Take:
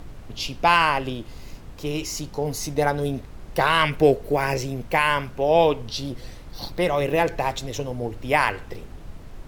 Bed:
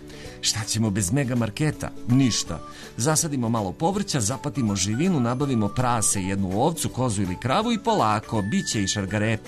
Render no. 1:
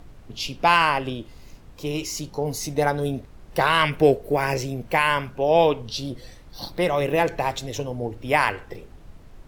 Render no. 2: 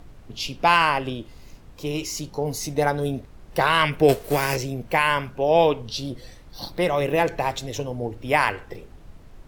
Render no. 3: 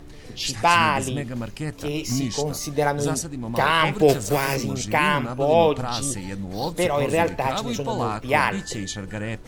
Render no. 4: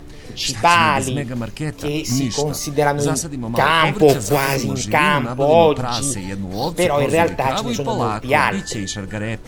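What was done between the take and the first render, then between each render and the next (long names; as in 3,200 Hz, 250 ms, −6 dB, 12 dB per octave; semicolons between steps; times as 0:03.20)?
noise reduction from a noise print 6 dB
0:04.08–0:04.55: spectral envelope flattened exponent 0.6
mix in bed −6.5 dB
level +5 dB; brickwall limiter −1 dBFS, peak gain reduction 1.5 dB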